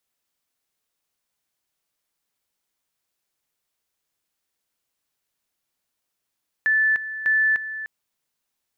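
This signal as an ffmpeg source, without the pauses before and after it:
-f lavfi -i "aevalsrc='pow(10,(-16-12.5*gte(mod(t,0.6),0.3))/20)*sin(2*PI*1750*t)':d=1.2:s=44100"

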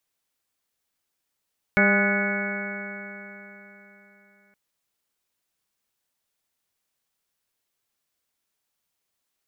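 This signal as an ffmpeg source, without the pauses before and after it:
-f lavfi -i "aevalsrc='0.0944*pow(10,-3*t/3.72)*sin(2*PI*199.24*t)+0.0473*pow(10,-3*t/3.72)*sin(2*PI*399.91*t)+0.0631*pow(10,-3*t/3.72)*sin(2*PI*603.41*t)+0.0299*pow(10,-3*t/3.72)*sin(2*PI*811.14*t)+0.015*pow(10,-3*t/3.72)*sin(2*PI*1024.42*t)+0.0237*pow(10,-3*t/3.72)*sin(2*PI*1244.51*t)+0.0891*pow(10,-3*t/3.72)*sin(2*PI*1472.63*t)+0.0531*pow(10,-3*t/3.72)*sin(2*PI*1709.9*t)+0.0251*pow(10,-3*t/3.72)*sin(2*PI*1957.36*t)+0.1*pow(10,-3*t/3.72)*sin(2*PI*2215.97*t)':d=2.77:s=44100"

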